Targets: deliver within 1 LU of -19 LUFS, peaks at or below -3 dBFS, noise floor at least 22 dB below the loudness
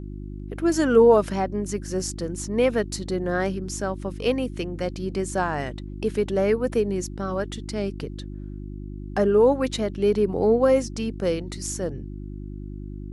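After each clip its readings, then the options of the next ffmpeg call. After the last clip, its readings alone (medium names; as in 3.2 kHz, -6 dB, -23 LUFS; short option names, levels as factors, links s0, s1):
hum 50 Hz; highest harmonic 350 Hz; hum level -32 dBFS; loudness -24.0 LUFS; peak level -6.0 dBFS; loudness target -19.0 LUFS
-> -af "bandreject=f=50:t=h:w=4,bandreject=f=100:t=h:w=4,bandreject=f=150:t=h:w=4,bandreject=f=200:t=h:w=4,bandreject=f=250:t=h:w=4,bandreject=f=300:t=h:w=4,bandreject=f=350:t=h:w=4"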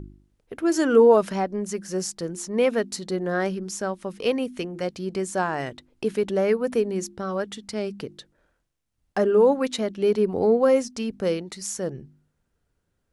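hum not found; loudness -24.0 LUFS; peak level -6.5 dBFS; loudness target -19.0 LUFS
-> -af "volume=1.78,alimiter=limit=0.708:level=0:latency=1"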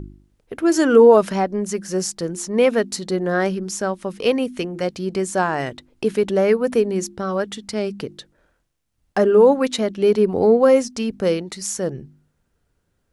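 loudness -19.5 LUFS; peak level -3.0 dBFS; noise floor -70 dBFS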